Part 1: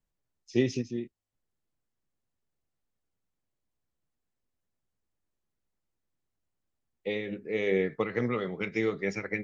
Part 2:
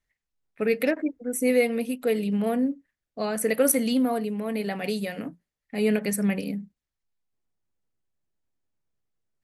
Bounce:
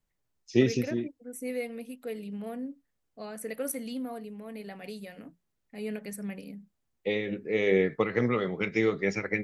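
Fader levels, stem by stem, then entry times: +3.0, -12.5 dB; 0.00, 0.00 s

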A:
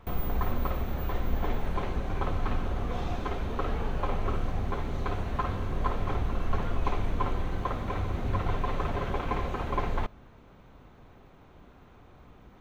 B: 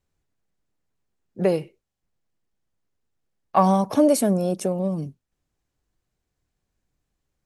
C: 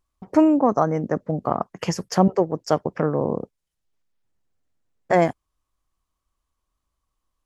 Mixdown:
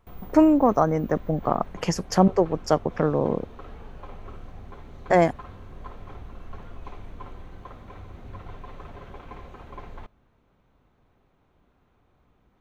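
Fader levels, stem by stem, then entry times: -11.5 dB, off, -0.5 dB; 0.00 s, off, 0.00 s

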